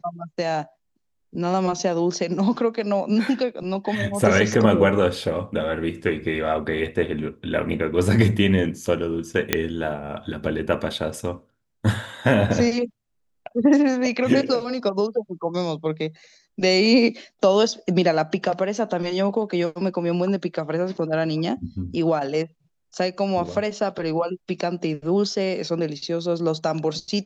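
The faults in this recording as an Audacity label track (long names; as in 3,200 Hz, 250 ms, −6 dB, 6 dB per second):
9.530000	9.530000	click −2 dBFS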